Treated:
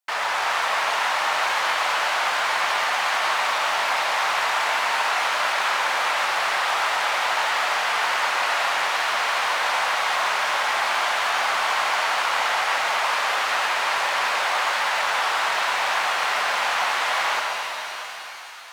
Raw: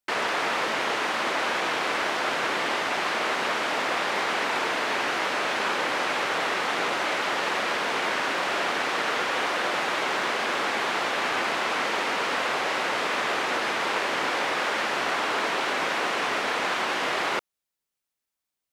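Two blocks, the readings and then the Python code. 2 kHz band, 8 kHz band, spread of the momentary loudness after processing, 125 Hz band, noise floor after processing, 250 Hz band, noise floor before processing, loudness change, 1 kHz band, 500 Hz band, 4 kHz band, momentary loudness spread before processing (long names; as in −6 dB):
+4.0 dB, +5.5 dB, 1 LU, can't be measured, −32 dBFS, −13.0 dB, below −85 dBFS, +4.0 dB, +5.0 dB, −1.5 dB, +4.5 dB, 0 LU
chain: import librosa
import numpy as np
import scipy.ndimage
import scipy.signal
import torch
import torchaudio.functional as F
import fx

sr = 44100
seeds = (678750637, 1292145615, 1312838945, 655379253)

y = 10.0 ** (-20.5 / 20.0) * (np.abs((x / 10.0 ** (-20.5 / 20.0) + 3.0) % 4.0 - 2.0) - 1.0)
y = fx.low_shelf_res(y, sr, hz=520.0, db=-13.5, q=1.5)
y = fx.rev_shimmer(y, sr, seeds[0], rt60_s=3.9, semitones=7, shimmer_db=-8, drr_db=-0.5)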